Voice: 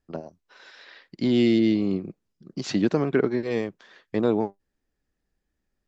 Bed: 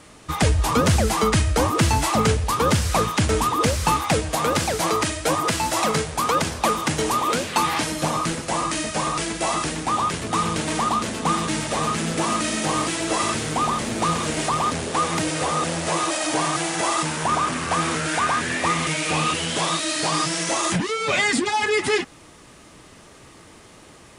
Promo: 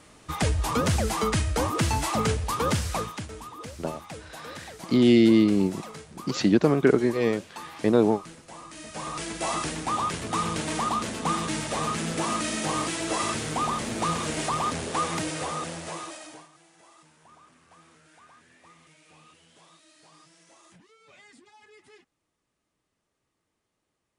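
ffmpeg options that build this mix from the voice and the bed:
-filter_complex "[0:a]adelay=3700,volume=2.5dB[a];[1:a]volume=9dB,afade=t=out:st=2.78:d=0.51:silence=0.199526,afade=t=in:st=8.71:d=0.81:silence=0.177828,afade=t=out:st=15.01:d=1.47:silence=0.0375837[b];[a][b]amix=inputs=2:normalize=0"

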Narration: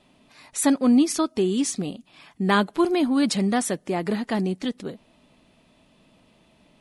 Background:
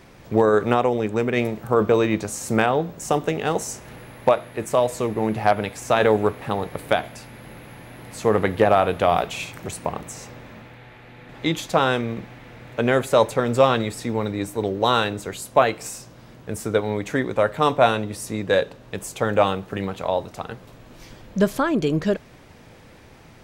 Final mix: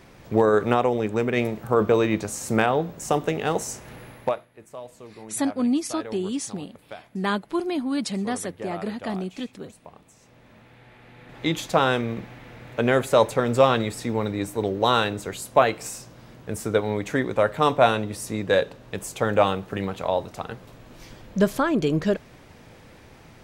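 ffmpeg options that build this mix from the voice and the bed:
-filter_complex "[0:a]adelay=4750,volume=-5dB[a];[1:a]volume=17dB,afade=t=out:st=4.07:d=0.4:silence=0.125893,afade=t=in:st=10.19:d=1.42:silence=0.11885[b];[a][b]amix=inputs=2:normalize=0"

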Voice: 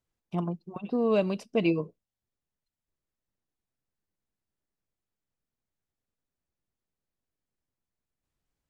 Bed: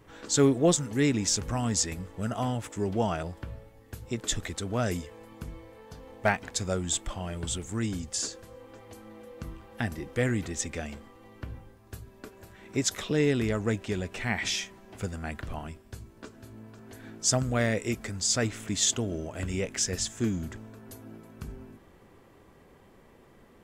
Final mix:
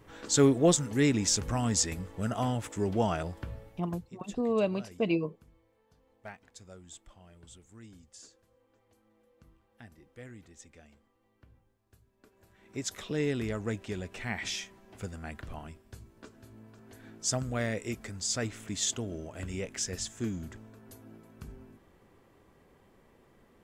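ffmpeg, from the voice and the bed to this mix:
-filter_complex "[0:a]adelay=3450,volume=-3dB[a];[1:a]volume=14.5dB,afade=t=out:st=3.7:d=0.41:silence=0.1,afade=t=in:st=12.12:d=1.09:silence=0.177828[b];[a][b]amix=inputs=2:normalize=0"

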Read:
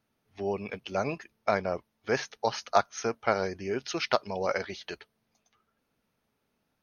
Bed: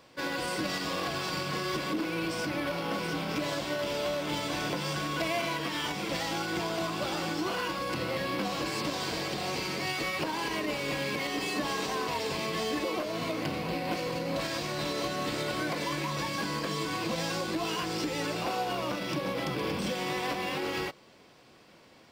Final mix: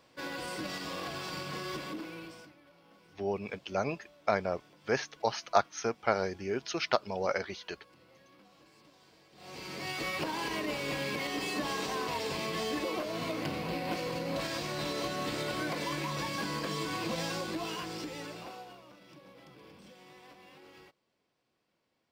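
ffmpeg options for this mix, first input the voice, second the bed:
-filter_complex "[0:a]adelay=2800,volume=-2dB[a];[1:a]volume=20dB,afade=t=out:st=1.72:d=0.83:silence=0.0749894,afade=t=in:st=9.33:d=0.78:silence=0.0501187,afade=t=out:st=17.2:d=1.63:silence=0.1[b];[a][b]amix=inputs=2:normalize=0"

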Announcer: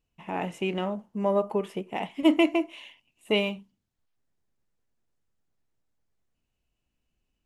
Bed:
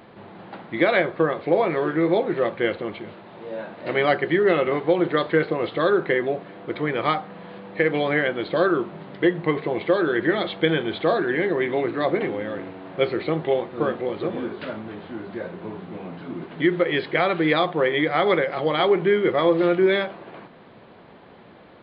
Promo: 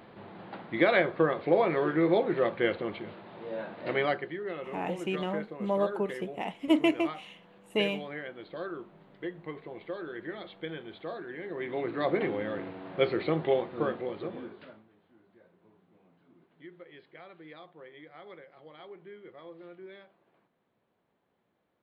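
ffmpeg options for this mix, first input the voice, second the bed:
-filter_complex "[0:a]adelay=4450,volume=-3.5dB[a];[1:a]volume=9dB,afade=t=out:st=3.84:d=0.5:silence=0.211349,afade=t=in:st=11.43:d=0.82:silence=0.211349,afade=t=out:st=13.54:d=1.34:silence=0.0595662[b];[a][b]amix=inputs=2:normalize=0"

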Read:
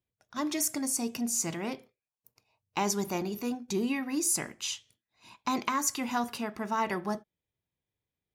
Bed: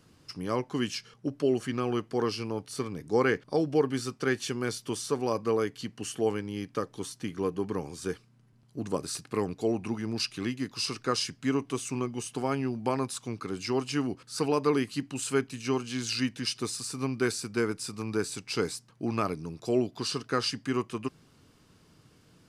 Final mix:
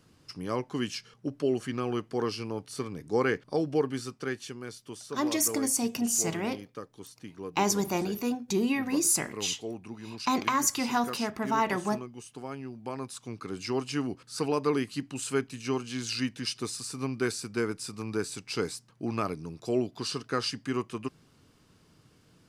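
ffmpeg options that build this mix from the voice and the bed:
-filter_complex "[0:a]adelay=4800,volume=3dB[a];[1:a]volume=6.5dB,afade=t=out:st=3.74:d=0.88:silence=0.398107,afade=t=in:st=12.82:d=0.79:silence=0.398107[b];[a][b]amix=inputs=2:normalize=0"

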